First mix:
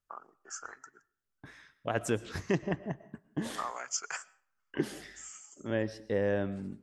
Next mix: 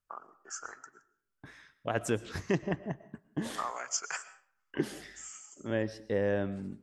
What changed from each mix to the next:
first voice: send +10.5 dB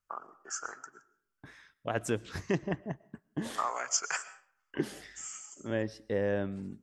first voice +3.5 dB; second voice: send -8.0 dB

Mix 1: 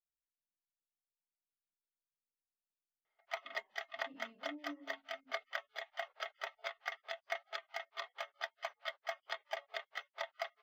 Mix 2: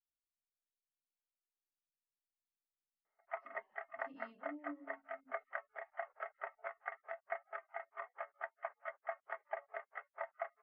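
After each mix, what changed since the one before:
background: add inverse Chebyshev low-pass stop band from 3.6 kHz, stop band 40 dB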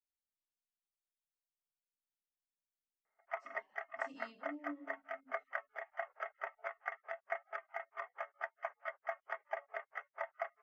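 speech: send +9.5 dB; master: remove distance through air 380 m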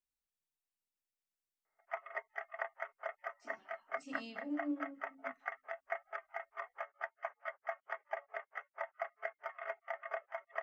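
speech +8.0 dB; background: entry -1.40 s

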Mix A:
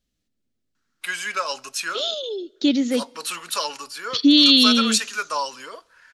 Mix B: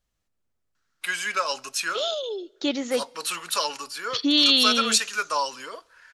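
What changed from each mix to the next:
second voice: add graphic EQ 250/1000/4000 Hz -11/+10/-5 dB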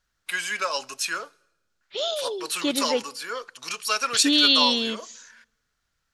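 first voice: entry -0.75 s; master: add peaking EQ 1.3 kHz -3.5 dB 0.22 oct

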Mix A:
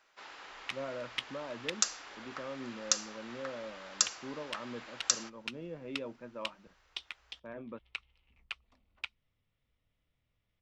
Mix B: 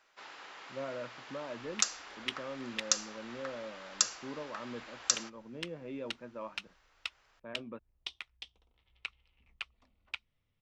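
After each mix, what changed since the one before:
second sound: entry +1.10 s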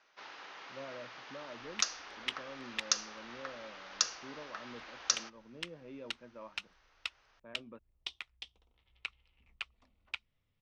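speech -6.5 dB; first sound: add steep low-pass 6.5 kHz 96 dB/octave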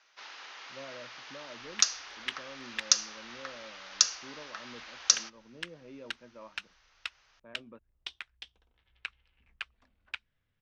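first sound: add tilt EQ +3 dB/octave; second sound: add peaking EQ 1.6 kHz +14.5 dB 0.24 oct

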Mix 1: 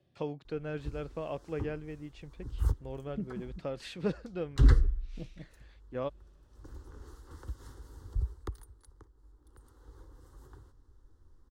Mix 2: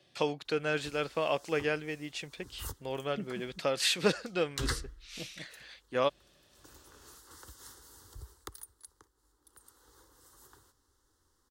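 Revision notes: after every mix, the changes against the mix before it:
first voice +10.0 dB; second voice +6.5 dB; master: add tilt EQ +4 dB/octave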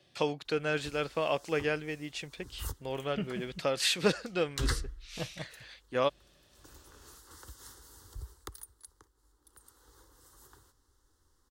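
second voice: remove band-pass filter 270 Hz, Q 1.6; master: add bass shelf 78 Hz +7.5 dB

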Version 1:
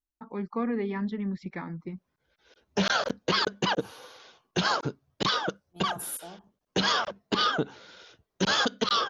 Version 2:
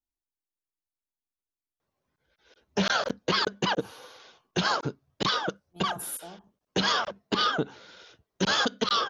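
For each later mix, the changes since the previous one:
first voice: muted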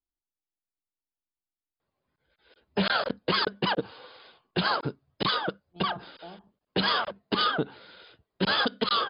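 master: add brick-wall FIR low-pass 5.1 kHz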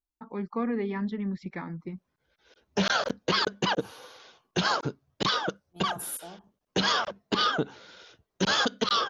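first voice: unmuted; master: remove brick-wall FIR low-pass 5.1 kHz

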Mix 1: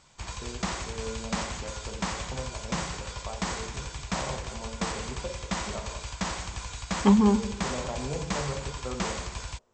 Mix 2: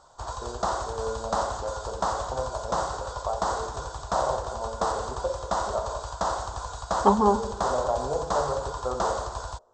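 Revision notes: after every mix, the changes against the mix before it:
master: add FFT filter 110 Hz 0 dB, 170 Hz -10 dB, 660 Hz +12 dB, 1.4 kHz +6 dB, 2.3 kHz -20 dB, 3.7 kHz -2 dB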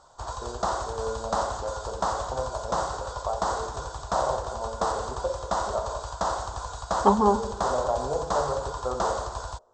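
no change

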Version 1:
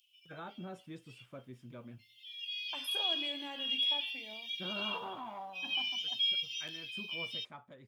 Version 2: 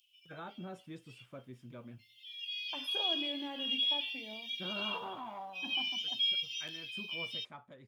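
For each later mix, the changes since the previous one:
second voice: add tilt EQ -3 dB/octave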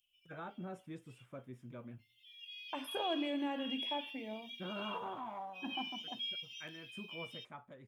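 second voice +5.0 dB; background -6.0 dB; master: add peaking EQ 4.5 kHz -9 dB 0.79 oct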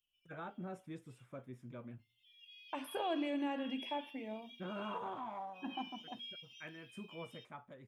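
background -8.0 dB

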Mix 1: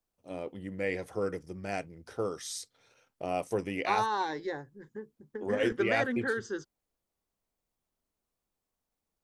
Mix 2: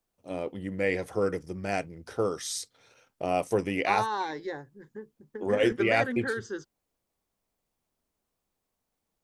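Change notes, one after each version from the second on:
first voice +5.0 dB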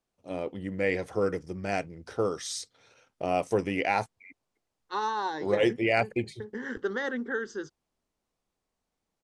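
second voice: entry +1.05 s; master: add low-pass 8.1 kHz 12 dB/octave

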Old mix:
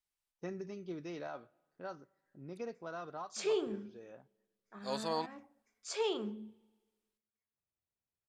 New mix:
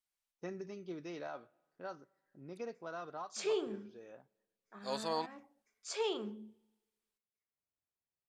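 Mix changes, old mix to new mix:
background: send -6.5 dB; master: add bass shelf 170 Hz -6.5 dB

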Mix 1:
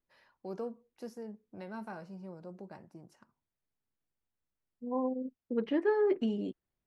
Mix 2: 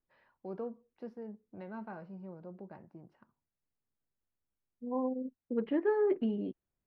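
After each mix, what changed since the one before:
master: add distance through air 390 m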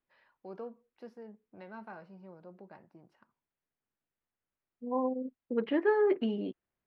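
second voice +5.5 dB; master: add tilt EQ +2.5 dB/octave

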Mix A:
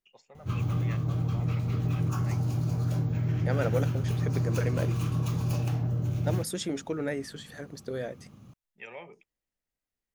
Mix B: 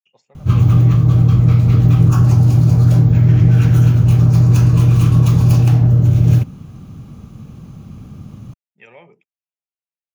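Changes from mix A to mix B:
second voice: muted; background +11.5 dB; master: add bass shelf 160 Hz +10.5 dB

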